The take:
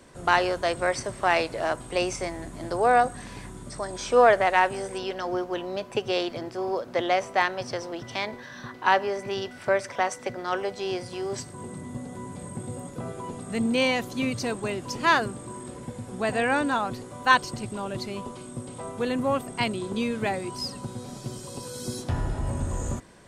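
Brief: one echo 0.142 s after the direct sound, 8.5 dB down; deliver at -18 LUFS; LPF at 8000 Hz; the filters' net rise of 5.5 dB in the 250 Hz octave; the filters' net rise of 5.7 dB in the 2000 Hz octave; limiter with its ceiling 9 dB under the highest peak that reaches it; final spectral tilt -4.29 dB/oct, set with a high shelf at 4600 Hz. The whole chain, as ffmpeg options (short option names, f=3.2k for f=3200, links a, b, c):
-af "lowpass=8k,equalizer=f=250:t=o:g=6.5,equalizer=f=2k:t=o:g=6,highshelf=f=4.6k:g=7,alimiter=limit=-10.5dB:level=0:latency=1,aecho=1:1:142:0.376,volume=7dB"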